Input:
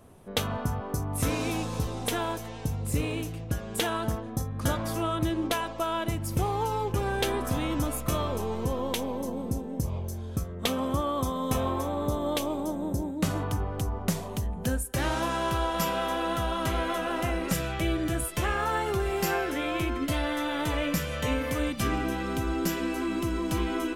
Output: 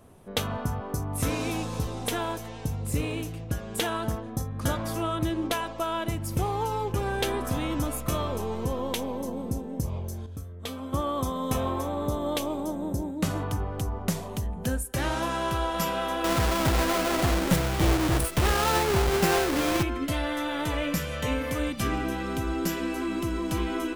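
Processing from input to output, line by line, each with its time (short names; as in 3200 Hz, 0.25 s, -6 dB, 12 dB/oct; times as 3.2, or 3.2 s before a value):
10.26–10.93 resonator 91 Hz, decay 0.2 s, harmonics odd, mix 80%
16.24–19.83 half-waves squared off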